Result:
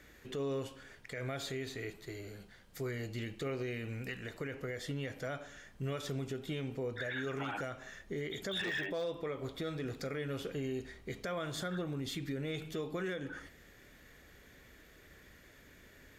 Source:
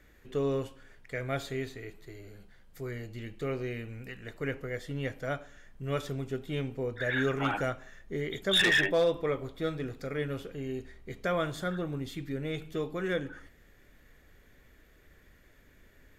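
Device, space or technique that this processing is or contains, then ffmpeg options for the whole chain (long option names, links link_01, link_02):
broadcast voice chain: -af "highpass=frequency=78:poles=1,deesser=0.95,acompressor=threshold=-36dB:ratio=4,equalizer=frequency=5200:width_type=o:width=1.7:gain=4,alimiter=level_in=9dB:limit=-24dB:level=0:latency=1:release=45,volume=-9dB,volume=3dB"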